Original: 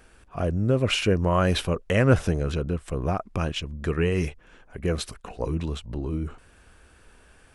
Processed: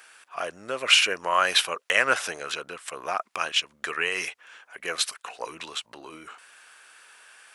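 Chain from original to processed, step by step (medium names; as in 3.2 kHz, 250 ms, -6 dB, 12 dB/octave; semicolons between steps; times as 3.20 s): high-pass 1.2 kHz 12 dB/octave; trim +8.5 dB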